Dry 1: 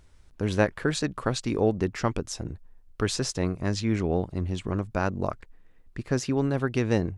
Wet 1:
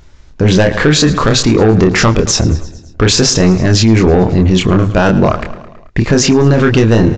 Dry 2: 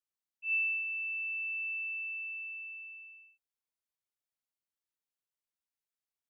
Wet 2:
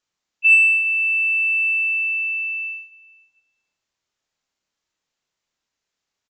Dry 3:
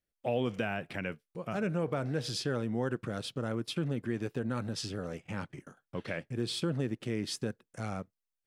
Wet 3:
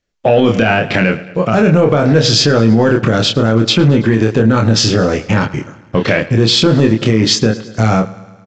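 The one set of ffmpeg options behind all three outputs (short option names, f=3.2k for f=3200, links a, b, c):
-filter_complex "[0:a]agate=range=-11dB:threshold=-46dB:ratio=16:detection=peak,aresample=16000,asoftclip=type=tanh:threshold=-21dB,aresample=44100,asplit=2[a][b];[b]adelay=27,volume=-4.5dB[c];[a][c]amix=inputs=2:normalize=0,aecho=1:1:109|218|327|436|545:0.1|0.059|0.0348|0.0205|0.0121,alimiter=level_in=26.5dB:limit=-1dB:release=50:level=0:latency=1,volume=-1dB"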